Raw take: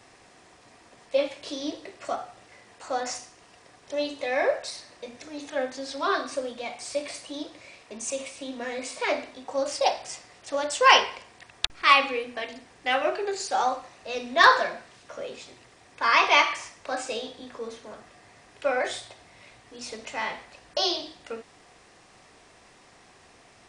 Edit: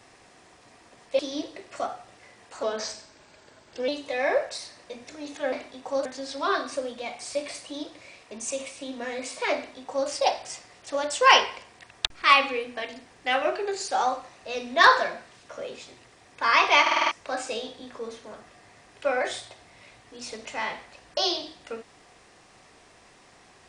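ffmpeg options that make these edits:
-filter_complex "[0:a]asplit=12[a][b][c][d][e][f][g][h][i][j][k][l];[a]atrim=end=1.192[m];[b]atrim=start=1.478:end=2.924[n];[c]atrim=start=2.92:end=4.01,asetpts=PTS-STARTPTS,asetrate=38367,aresample=44100[o];[d]atrim=start=4.006:end=5.652[p];[e]atrim=start=9.148:end=9.682[q];[f]atrim=start=5.648:end=16.462[r];[g]atrim=start=16.408:end=16.462[s];[h]atrim=start=16.408:end=16.462[t];[i]atrim=start=16.408:end=16.462[u];[j]atrim=start=16.408:end=16.462[v];[k]atrim=start=16.408:end=16.462[w];[l]atrim=start=16.708[x];[m][n]acrossfade=d=0.004:c1=hsin:c2=hsin[y];[y][o]acrossfade=d=0.004:c1=hsin:c2=hsin[z];[z][p]acrossfade=d=0.004:c1=hsin:c2=hsin[aa];[aa][q]acrossfade=d=0.004:c1=hsin:c2=hsin[ab];[ab][r]acrossfade=d=0.004:c1=hsin:c2=hsin[ac];[ac][s]acrossfade=d=0.004:c1=hsin:c2=hsin[ad];[ad][t]acrossfade=d=0.004:c1=hsin:c2=hsin[ae];[ae][u]acrossfade=d=0.004:c1=hsin:c2=hsin[af];[af][v]acrossfade=d=0.004:c1=hsin:c2=hsin[ag];[ag][w]acrossfade=d=0.004:c1=hsin:c2=hsin[ah];[ah][x]acrossfade=d=0.004:c1=hsin:c2=hsin"

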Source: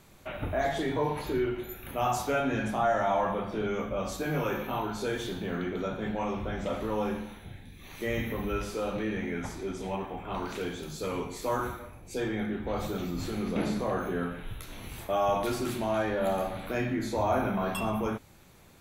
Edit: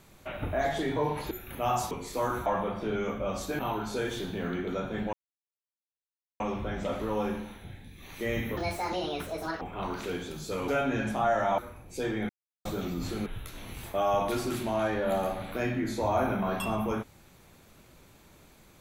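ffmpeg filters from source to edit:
-filter_complex "[0:a]asplit=13[a][b][c][d][e][f][g][h][i][j][k][l][m];[a]atrim=end=1.312[n];[b]atrim=start=1.668:end=2.272[o];[c]atrim=start=11.198:end=11.752[p];[d]atrim=start=3.168:end=4.302[q];[e]atrim=start=4.668:end=6.21,asetpts=PTS-STARTPTS,afade=t=out:st=1.538:d=0.004:c=hsin,apad=pad_dur=1.27[r];[f]atrim=start=6.21:end=8.384,asetpts=PTS-STARTPTS,afade=t=in:d=0.004:c=hsin[s];[g]atrim=start=8.38:end=10.13,asetpts=PTS-STARTPTS,asetrate=74088,aresample=44100[t];[h]atrim=start=10.126:end=11.202[u];[i]atrim=start=2.268:end=3.172[v];[j]atrim=start=11.748:end=12.46,asetpts=PTS-STARTPTS,afade=t=out:st=0.708:d=0.004:c=hsin[w];[k]atrim=start=12.46:end=12.82,asetpts=PTS-STARTPTS,volume=0[x];[l]atrim=start=12.82:end=13.432,asetpts=PTS-STARTPTS,afade=t=in:d=0.004:c=hsin[y];[m]atrim=start=14.408[z];[n][o]acrossfade=d=0.004:c1=hsin:c2=hsin[aa];[aa][p]acrossfade=d=0.004:c1=hsin:c2=hsin[ab];[ab][q]acrossfade=d=0.004:c1=hsin:c2=hsin[ac];[r][s]concat=n=2:v=0:a=1[ad];[ac][ad]acrossfade=d=0.004:c1=hsin:c2=hsin[ae];[ae][t]acrossfade=d=0.004:c1=hsin:c2=hsin[af];[af][u]acrossfade=d=0.004:c1=hsin:c2=hsin[ag];[ag][v]acrossfade=d=0.004:c1=hsin:c2=hsin[ah];[w][x][y]concat=n=3:v=0:a=1[ai];[ah][ai]acrossfade=d=0.004:c1=hsin:c2=hsin[aj];[aj][z]acrossfade=d=0.004:c1=hsin:c2=hsin"

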